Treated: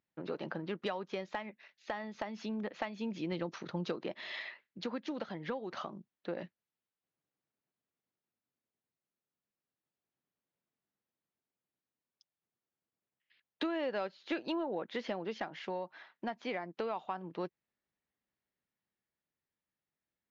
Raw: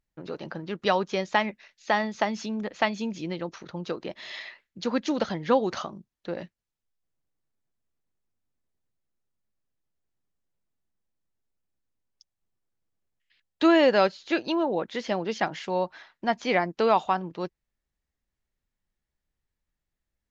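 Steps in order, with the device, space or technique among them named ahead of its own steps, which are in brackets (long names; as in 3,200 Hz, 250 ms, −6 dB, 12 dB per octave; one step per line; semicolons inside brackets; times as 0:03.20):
AM radio (band-pass filter 160–3,600 Hz; downward compressor 8 to 1, threshold −31 dBFS, peak gain reduction 16 dB; soft clipping −19 dBFS, distortion −26 dB; amplitude tremolo 0.28 Hz, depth 28%)
0:03.32–0:04.03: bass and treble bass +4 dB, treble +7 dB
level −1 dB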